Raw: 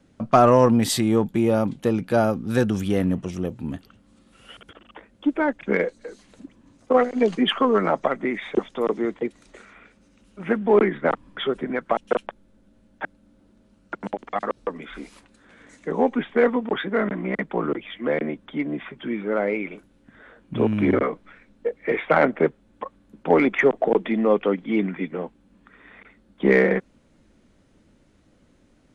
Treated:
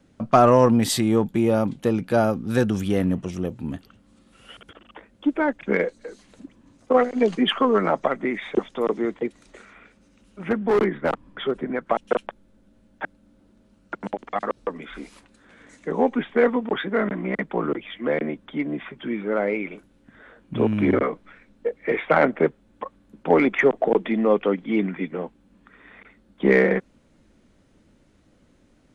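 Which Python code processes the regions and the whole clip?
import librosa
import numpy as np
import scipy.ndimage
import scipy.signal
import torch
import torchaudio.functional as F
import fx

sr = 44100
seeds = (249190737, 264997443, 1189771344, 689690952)

y = fx.chain(x, sr, fx.high_shelf(hz=2100.0, db=-6.0),
    fx.clip_hard(threshold_db=-15.0), at=(10.49, 11.87))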